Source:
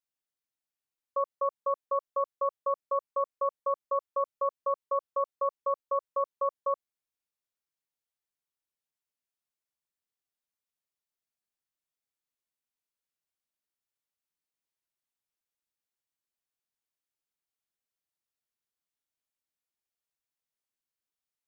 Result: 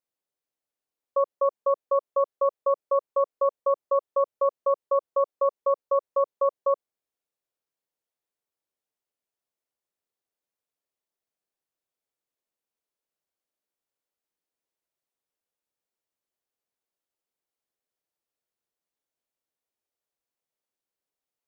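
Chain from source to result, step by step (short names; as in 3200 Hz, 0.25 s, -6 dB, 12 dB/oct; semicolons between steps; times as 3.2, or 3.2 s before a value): bell 490 Hz +10 dB 1.9 oct; gain -1.5 dB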